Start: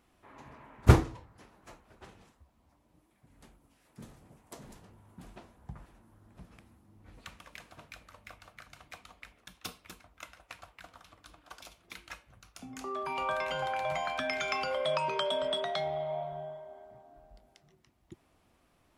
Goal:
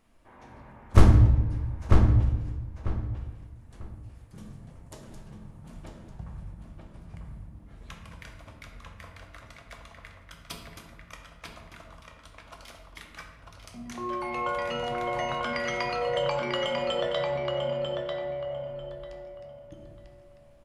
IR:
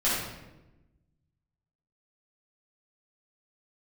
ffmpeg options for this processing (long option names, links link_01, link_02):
-filter_complex "[0:a]aeval=exprs='clip(val(0),-1,0.168)':channel_layout=same,asplit=2[link_01][link_02];[link_02]adelay=868,lowpass=frequency=3900:poles=1,volume=-3.5dB,asplit=2[link_03][link_04];[link_04]adelay=868,lowpass=frequency=3900:poles=1,volume=0.25,asplit=2[link_05][link_06];[link_06]adelay=868,lowpass=frequency=3900:poles=1,volume=0.25,asplit=2[link_07][link_08];[link_08]adelay=868,lowpass=frequency=3900:poles=1,volume=0.25[link_09];[link_01][link_03][link_05][link_07][link_09]amix=inputs=5:normalize=0,asplit=2[link_10][link_11];[1:a]atrim=start_sample=2205,lowshelf=frequency=170:gain=12[link_12];[link_11][link_12]afir=irnorm=-1:irlink=0,volume=-15dB[link_13];[link_10][link_13]amix=inputs=2:normalize=0,asetrate=40517,aresample=44100,volume=-1dB"